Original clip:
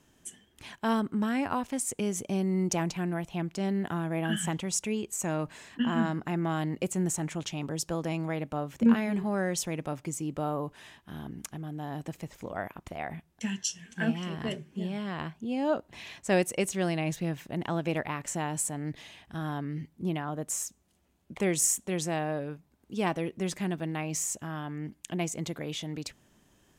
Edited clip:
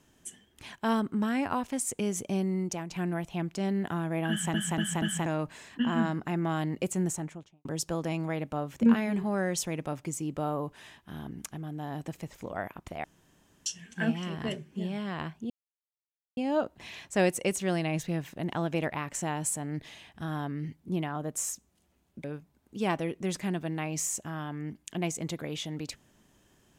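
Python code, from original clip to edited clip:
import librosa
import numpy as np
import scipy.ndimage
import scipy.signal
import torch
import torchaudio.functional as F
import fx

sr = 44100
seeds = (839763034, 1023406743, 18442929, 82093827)

y = fx.studio_fade_out(x, sr, start_s=6.98, length_s=0.67)
y = fx.edit(y, sr, fx.fade_out_to(start_s=2.38, length_s=0.53, floor_db=-11.0),
    fx.stutter_over(start_s=4.3, slice_s=0.24, count=4),
    fx.room_tone_fill(start_s=13.04, length_s=0.62),
    fx.insert_silence(at_s=15.5, length_s=0.87),
    fx.cut(start_s=21.37, length_s=1.04), tone=tone)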